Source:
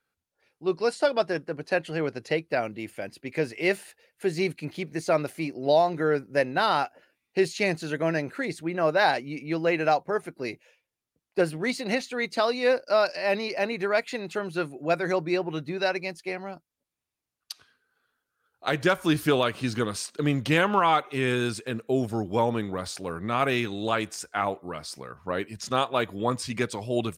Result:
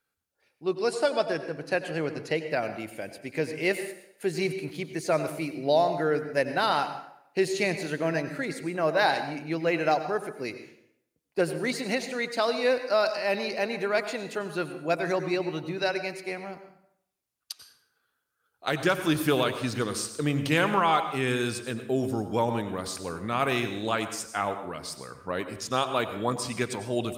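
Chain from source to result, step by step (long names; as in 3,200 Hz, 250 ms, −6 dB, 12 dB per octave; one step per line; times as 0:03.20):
high-shelf EQ 6,600 Hz +6 dB
dense smooth reverb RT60 0.73 s, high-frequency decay 0.75×, pre-delay 80 ms, DRR 9.5 dB
level −2 dB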